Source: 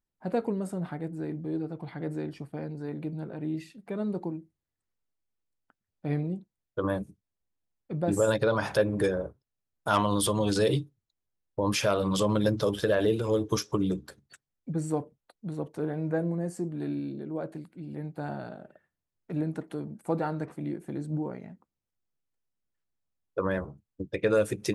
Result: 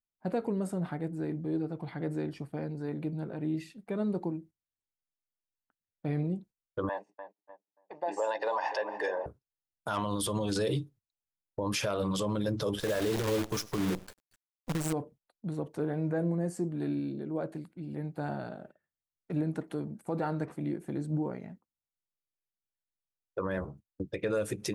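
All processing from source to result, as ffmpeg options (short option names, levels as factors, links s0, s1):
-filter_complex "[0:a]asettb=1/sr,asplit=3[s0][s1][s2];[s0]atrim=end=6.894[s3];[s1]atrim=start=6.89:end=9.26,asetpts=PTS-STARTPTS,afade=t=in:d=0.004:c=qsin,afade=t=out:st=2.366:d=0.004:c=qsin,highpass=f=450:w=0.5412,highpass=f=450:w=1.3066,equalizer=f=460:t=q:w=4:g=6,equalizer=f=870:t=q:w=4:g=8,equalizer=f=1300:t=q:w=4:g=-7,equalizer=f=2000:t=q:w=4:g=3,equalizer=f=3700:t=q:w=4:g=-9,lowpass=f=5400:w=0.5412,lowpass=f=5400:w=1.3066,aecho=1:1:1.1:0.65,atrim=end_sample=104517,asplit=2[s4][s5];[s5]adelay=292,lowpass=f=1600:p=1,volume=0.224,asplit=2[s6][s7];[s7]adelay=292,lowpass=f=1600:p=1,volume=0.55,asplit=2[s8][s9];[s9]adelay=292,lowpass=f=1600:p=1,volume=0.55,asplit=2[s10][s11];[s11]adelay=292,lowpass=f=1600:p=1,volume=0.55,asplit=2[s12][s13];[s13]adelay=292,lowpass=f=1600:p=1,volume=0.55,asplit=2[s14][s15];[s15]adelay=292,lowpass=f=1600:p=1,volume=0.55[s16];[s4][s6][s8][s10][s12][s14][s16]amix=inputs=7:normalize=0,atrim=end_sample=104517[s17];[s2]atrim=start=9.256[s18];[s3][s17]acrossfade=d=0.004:c1=hsin:c2=qsin[s19];[s19][s18]acrossfade=d=0.004:c1=qsin:c2=hsin,asettb=1/sr,asplit=3[s20][s21][s22];[s20]atrim=end=12.804[s23];[s21]atrim=start=12.8:end=14.93,asetpts=PTS-STARTPTS,afade=t=in:d=0.004:c=qsin,afade=t=out:st=2.126:d=0.004:c=qsin,aecho=1:1:98:0.0944,atrim=end_sample=93933,acrusher=bits=6:dc=4:mix=0:aa=0.000001[s24];[s22]atrim=start=14.926[s25];[s23][s24]acrossfade=d=0.004:c1=hsin:c2=qsin[s26];[s26][s25]acrossfade=d=0.004:c1=qsin:c2=hsin,agate=range=0.224:threshold=0.00316:ratio=16:detection=peak,alimiter=limit=0.0794:level=0:latency=1:release=76"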